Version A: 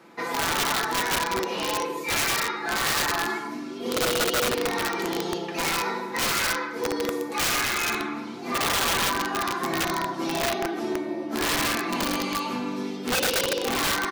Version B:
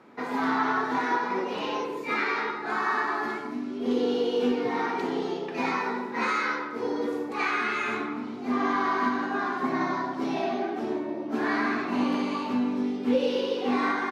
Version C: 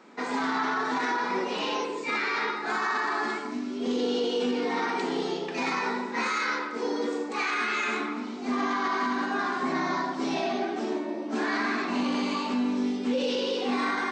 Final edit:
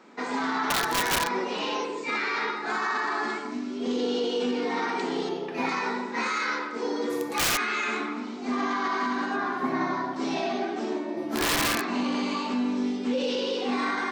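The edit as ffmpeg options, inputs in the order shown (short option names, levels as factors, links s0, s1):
-filter_complex "[0:a]asplit=3[s0][s1][s2];[1:a]asplit=2[s3][s4];[2:a]asplit=6[s5][s6][s7][s8][s9][s10];[s5]atrim=end=0.702[s11];[s0]atrim=start=0.698:end=1.292[s12];[s6]atrim=start=1.288:end=5.292[s13];[s3]atrim=start=5.288:end=5.692[s14];[s7]atrim=start=5.688:end=7.102[s15];[s1]atrim=start=7.098:end=7.572[s16];[s8]atrim=start=7.568:end=9.362[s17];[s4]atrim=start=9.358:end=10.162[s18];[s9]atrim=start=10.158:end=11.172[s19];[s2]atrim=start=11.168:end=11.812[s20];[s10]atrim=start=11.808[s21];[s11][s12]acrossfade=d=0.004:c1=hsin:c2=hsin[s22];[s22][s13]acrossfade=d=0.004:c1=hsin:c2=hsin[s23];[s23][s14]acrossfade=d=0.004:c1=hsin:c2=hsin[s24];[s24][s15]acrossfade=d=0.004:c1=hsin:c2=hsin[s25];[s25][s16]acrossfade=d=0.004:c1=hsin:c2=hsin[s26];[s26][s17]acrossfade=d=0.004:c1=hsin:c2=hsin[s27];[s27][s18]acrossfade=d=0.004:c1=hsin:c2=hsin[s28];[s28][s19]acrossfade=d=0.004:c1=hsin:c2=hsin[s29];[s29][s20]acrossfade=d=0.004:c1=hsin:c2=hsin[s30];[s30][s21]acrossfade=d=0.004:c1=hsin:c2=hsin"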